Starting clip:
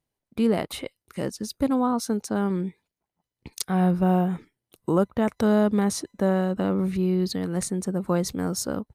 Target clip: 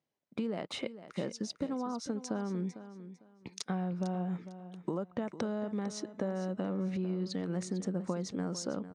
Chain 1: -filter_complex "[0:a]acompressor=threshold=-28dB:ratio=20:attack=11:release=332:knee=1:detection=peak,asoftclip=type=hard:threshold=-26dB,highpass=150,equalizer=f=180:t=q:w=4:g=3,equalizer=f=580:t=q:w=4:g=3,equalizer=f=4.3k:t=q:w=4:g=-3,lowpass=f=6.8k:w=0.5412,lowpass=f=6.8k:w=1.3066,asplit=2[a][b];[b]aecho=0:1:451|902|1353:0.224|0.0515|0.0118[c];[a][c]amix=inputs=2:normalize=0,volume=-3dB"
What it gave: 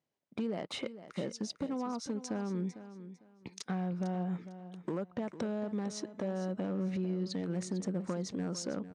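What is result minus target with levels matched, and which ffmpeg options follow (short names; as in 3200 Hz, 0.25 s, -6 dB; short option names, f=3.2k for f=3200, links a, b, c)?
hard clip: distortion +19 dB
-filter_complex "[0:a]acompressor=threshold=-28dB:ratio=20:attack=11:release=332:knee=1:detection=peak,asoftclip=type=hard:threshold=-14.5dB,highpass=150,equalizer=f=180:t=q:w=4:g=3,equalizer=f=580:t=q:w=4:g=3,equalizer=f=4.3k:t=q:w=4:g=-3,lowpass=f=6.8k:w=0.5412,lowpass=f=6.8k:w=1.3066,asplit=2[a][b];[b]aecho=0:1:451|902|1353:0.224|0.0515|0.0118[c];[a][c]amix=inputs=2:normalize=0,volume=-3dB"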